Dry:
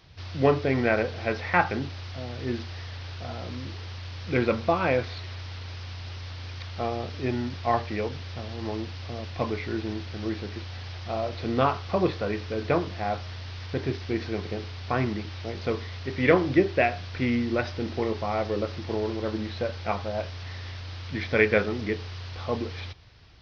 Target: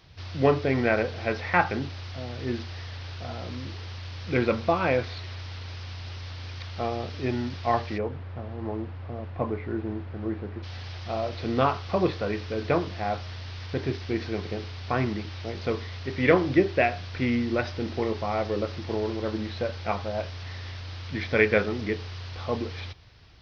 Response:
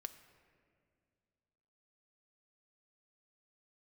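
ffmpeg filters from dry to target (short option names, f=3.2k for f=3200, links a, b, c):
-filter_complex "[0:a]asplit=3[a][b][c];[a]afade=t=out:st=7.97:d=0.02[d];[b]lowpass=1.4k,afade=t=in:st=7.97:d=0.02,afade=t=out:st=10.62:d=0.02[e];[c]afade=t=in:st=10.62:d=0.02[f];[d][e][f]amix=inputs=3:normalize=0"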